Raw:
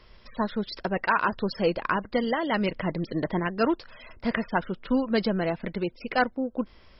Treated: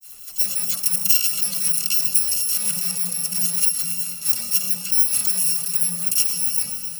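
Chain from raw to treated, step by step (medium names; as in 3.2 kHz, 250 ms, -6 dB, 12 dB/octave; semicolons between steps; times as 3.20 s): bit-reversed sample order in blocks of 128 samples; de-hum 46.53 Hz, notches 28; reverberation RT60 3.9 s, pre-delay 59 ms, DRR 14 dB; in parallel at +2 dB: compressor with a negative ratio -37 dBFS, ratio -1; on the sum: peaking EQ 180 Hz +14.5 dB 0.41 oct; granulator 124 ms, grains 20 per s, spray 19 ms, pitch spread up and down by 0 st; tilt EQ +4 dB/octave; phase dispersion lows, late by 41 ms, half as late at 910 Hz; trim -5 dB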